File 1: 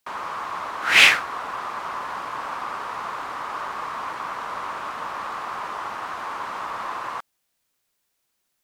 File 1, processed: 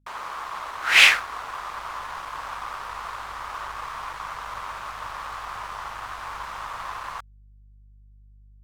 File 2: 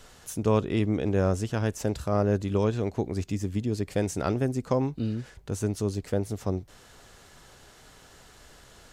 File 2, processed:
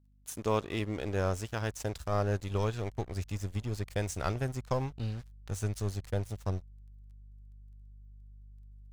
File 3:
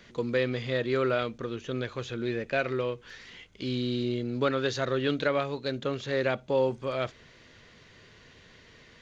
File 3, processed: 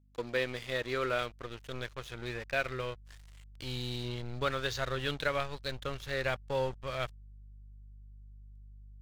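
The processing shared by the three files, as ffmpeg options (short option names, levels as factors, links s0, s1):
-af "lowshelf=f=440:g=-9.5,aeval=exprs='sgn(val(0))*max(abs(val(0))-0.00596,0)':c=same,aeval=exprs='val(0)+0.000631*(sin(2*PI*50*n/s)+sin(2*PI*2*50*n/s)/2+sin(2*PI*3*50*n/s)/3+sin(2*PI*4*50*n/s)/4+sin(2*PI*5*50*n/s)/5)':c=same,asubboost=boost=7.5:cutoff=100"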